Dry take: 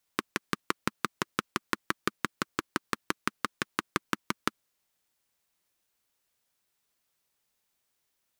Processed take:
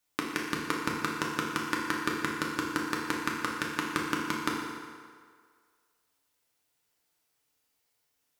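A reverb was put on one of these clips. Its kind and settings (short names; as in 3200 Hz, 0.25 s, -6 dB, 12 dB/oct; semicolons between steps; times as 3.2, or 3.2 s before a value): FDN reverb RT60 1.9 s, low-frequency decay 0.75×, high-frequency decay 0.75×, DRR -2.5 dB; gain -2.5 dB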